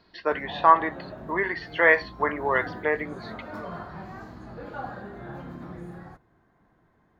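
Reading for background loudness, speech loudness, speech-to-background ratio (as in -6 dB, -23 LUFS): -40.0 LUFS, -24.0 LUFS, 16.0 dB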